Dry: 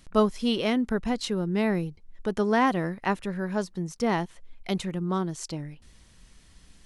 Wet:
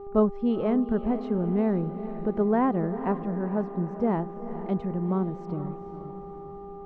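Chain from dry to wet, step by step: buzz 400 Hz, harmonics 3, -41 dBFS -7 dB/oct; Bessel low-pass 720 Hz, order 2; diffused feedback echo 0.457 s, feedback 50%, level -11 dB; gain +1.5 dB

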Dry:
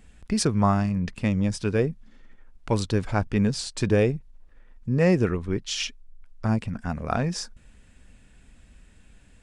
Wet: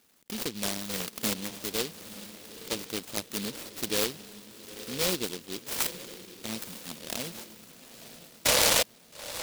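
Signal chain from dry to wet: 0.89–1.34 half-waves squared off; tilt +1.5 dB/oct; in parallel at -6 dB: decimation with a swept rate 23×, swing 60% 0.26 Hz; 8.45–8.83 on the sum: painted sound noise 460–1400 Hz -13 dBFS; speaker cabinet 340–3100 Hz, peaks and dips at 400 Hz -4 dB, 740 Hz -9 dB, 1300 Hz -7 dB, 2500 Hz +10 dB; on a send: diffused feedback echo 0.903 s, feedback 42%, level -12 dB; on the sum: noise-modulated delay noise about 3600 Hz, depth 0.28 ms; gain -5 dB

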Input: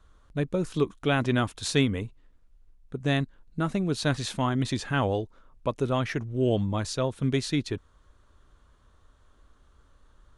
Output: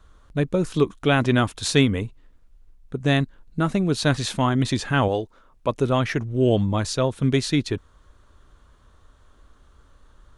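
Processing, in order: 5.08–5.69 low shelf 210 Hz -7.5 dB; gain +5.5 dB

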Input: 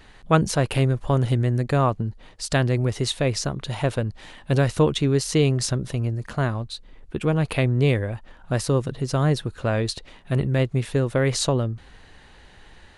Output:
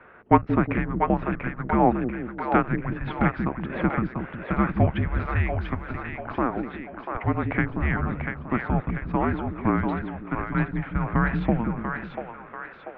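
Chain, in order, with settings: mistuned SSB -360 Hz 500–2400 Hz; split-band echo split 410 Hz, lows 0.181 s, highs 0.69 s, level -5 dB; 5.11–5.98 added noise brown -62 dBFS; gain +4.5 dB

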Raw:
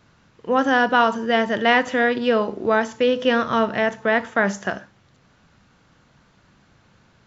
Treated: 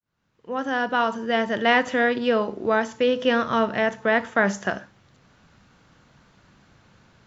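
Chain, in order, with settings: opening faded in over 1.85 s; vocal rider within 3 dB 2 s; gain -1.5 dB

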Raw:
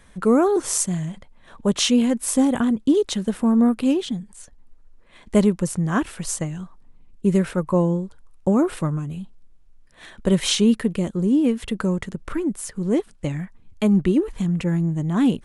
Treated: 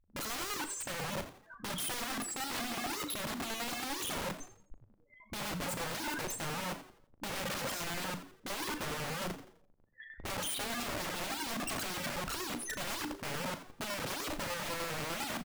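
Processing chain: notches 60/120/180/240/300 Hz; gate -38 dBFS, range -23 dB; 0.98–2.85 ripple EQ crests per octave 1.7, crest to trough 6 dB; in parallel at +2 dB: limiter -14.5 dBFS, peak gain reduction 9.5 dB; on the sum: compressor 20:1, threshold -26 dBFS, peak gain reduction 19 dB; loudest bins only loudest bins 4; chopper 10 Hz, depth 60%, duty 40%; overdrive pedal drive 31 dB, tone 1900 Hz, clips at -21 dBFS; wrapped overs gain 33 dB; doubler 38 ms -12 dB; frequency-shifting echo 85 ms, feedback 36%, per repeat +96 Hz, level -13 dB; on a send at -16.5 dB: reverb RT60 0.45 s, pre-delay 3 ms

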